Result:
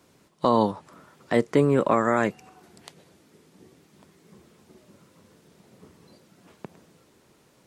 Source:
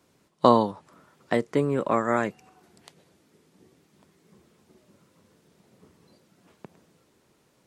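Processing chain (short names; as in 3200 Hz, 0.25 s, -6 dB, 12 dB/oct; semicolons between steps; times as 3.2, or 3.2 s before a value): limiter -13.5 dBFS, peak gain reduction 10 dB; gain +5 dB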